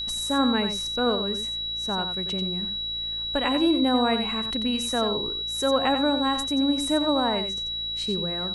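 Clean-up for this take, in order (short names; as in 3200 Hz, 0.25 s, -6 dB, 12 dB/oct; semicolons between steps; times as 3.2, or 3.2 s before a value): de-hum 56.6 Hz, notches 13; notch 3900 Hz, Q 30; inverse comb 90 ms -8.5 dB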